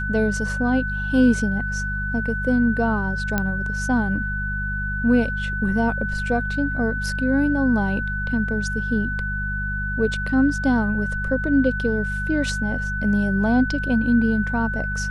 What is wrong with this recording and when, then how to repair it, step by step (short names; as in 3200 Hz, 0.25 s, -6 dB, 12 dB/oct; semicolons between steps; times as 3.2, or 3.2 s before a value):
hum 50 Hz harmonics 4 -28 dBFS
tone 1500 Hz -26 dBFS
3.38 pop -8 dBFS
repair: de-click; de-hum 50 Hz, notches 4; notch 1500 Hz, Q 30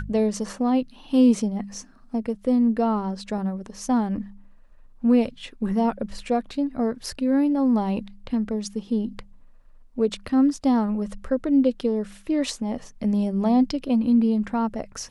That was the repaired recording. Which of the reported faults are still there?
none